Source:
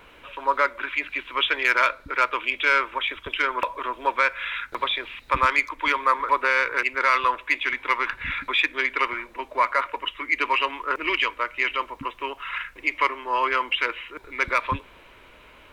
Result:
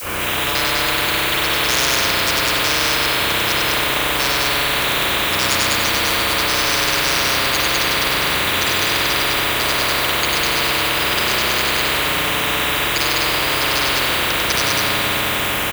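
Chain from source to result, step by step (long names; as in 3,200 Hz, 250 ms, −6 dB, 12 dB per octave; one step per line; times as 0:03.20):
reversed piece by piece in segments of 110 ms
frequency shifter +33 Hz
downward expander −48 dBFS
background noise blue −52 dBFS
on a send: loudspeakers that aren't time-aligned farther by 33 metres −2 dB, 69 metres −1 dB, 100 metres −10 dB
on the sum: spring reverb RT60 1.9 s, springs 32/45 ms, chirp 25 ms, DRR −9 dB
every bin compressed towards the loudest bin 10 to 1
level −5 dB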